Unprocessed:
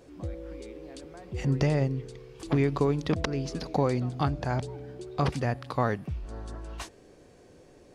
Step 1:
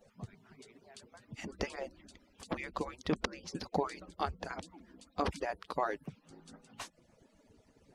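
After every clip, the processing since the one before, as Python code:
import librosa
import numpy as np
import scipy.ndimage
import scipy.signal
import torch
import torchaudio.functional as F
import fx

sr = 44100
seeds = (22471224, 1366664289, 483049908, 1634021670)

y = fx.hpss_only(x, sr, part='percussive')
y = y * 10.0 ** (-4.0 / 20.0)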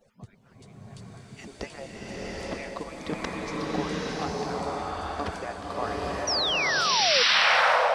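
y = fx.spec_paint(x, sr, seeds[0], shape='fall', start_s=6.27, length_s=0.96, low_hz=460.0, high_hz=6000.0, level_db=-27.0)
y = fx.rev_bloom(y, sr, seeds[1], attack_ms=880, drr_db=-6.5)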